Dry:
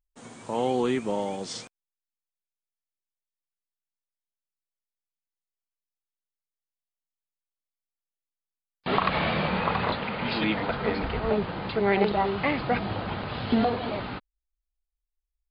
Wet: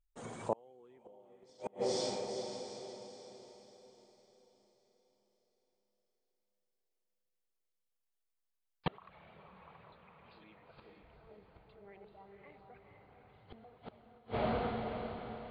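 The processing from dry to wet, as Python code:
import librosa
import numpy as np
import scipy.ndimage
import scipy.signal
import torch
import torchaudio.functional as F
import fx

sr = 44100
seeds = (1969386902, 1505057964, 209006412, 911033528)

y = fx.envelope_sharpen(x, sr, power=1.5)
y = fx.echo_diffused(y, sr, ms=474, feedback_pct=45, wet_db=-4)
y = fx.gate_flip(y, sr, shuts_db=-20.0, range_db=-34)
y = fx.peak_eq(y, sr, hz=260.0, db=-7.5, octaves=0.62)
y = y * librosa.db_to_amplitude(1.5)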